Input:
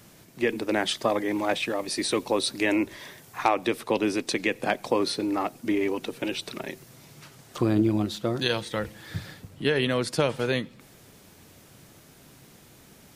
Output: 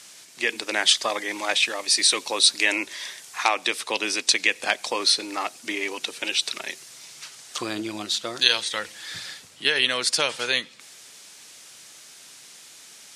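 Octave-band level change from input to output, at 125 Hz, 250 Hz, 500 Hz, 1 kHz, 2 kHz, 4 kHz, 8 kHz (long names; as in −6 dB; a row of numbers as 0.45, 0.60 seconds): −16.5, −9.5, −5.0, +0.5, +7.0, +11.0, +12.0 decibels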